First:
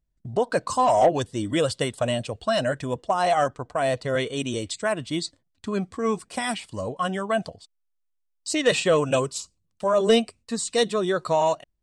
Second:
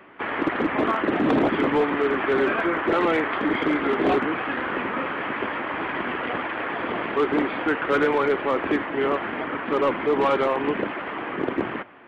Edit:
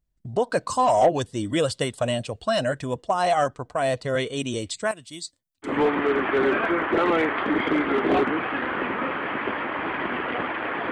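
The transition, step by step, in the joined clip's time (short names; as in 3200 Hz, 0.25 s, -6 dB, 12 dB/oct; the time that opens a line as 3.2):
first
4.91–5.78 pre-emphasis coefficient 0.8
5.7 switch to second from 1.65 s, crossfade 0.16 s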